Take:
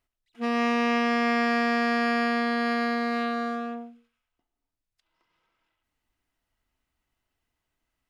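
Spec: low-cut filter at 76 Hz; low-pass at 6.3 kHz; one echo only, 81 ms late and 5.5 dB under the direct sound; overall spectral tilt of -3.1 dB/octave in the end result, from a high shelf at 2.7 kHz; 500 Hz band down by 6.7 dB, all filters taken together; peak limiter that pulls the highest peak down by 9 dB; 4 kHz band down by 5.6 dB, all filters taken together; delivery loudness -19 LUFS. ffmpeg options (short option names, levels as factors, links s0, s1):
-af "highpass=76,lowpass=6300,equalizer=f=500:t=o:g=-8.5,highshelf=f=2700:g=-4,equalizer=f=4000:t=o:g=-3.5,alimiter=level_in=1.19:limit=0.0631:level=0:latency=1,volume=0.841,aecho=1:1:81:0.531,volume=5.01"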